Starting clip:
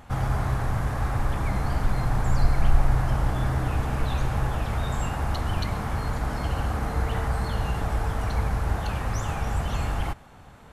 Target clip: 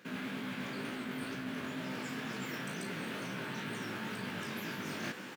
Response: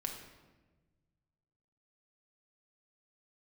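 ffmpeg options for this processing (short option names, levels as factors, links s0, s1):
-filter_complex "[0:a]highpass=f=92:w=0.5412,highpass=f=92:w=1.3066,asetrate=88200,aresample=44100,asplit=2[s0][s1];[s1]adelay=36,volume=0.473[s2];[s0][s2]amix=inputs=2:normalize=0,flanger=delay=15.5:depth=7:speed=2.1,areverse,acompressor=threshold=0.00708:ratio=16,areverse,volume=2.11"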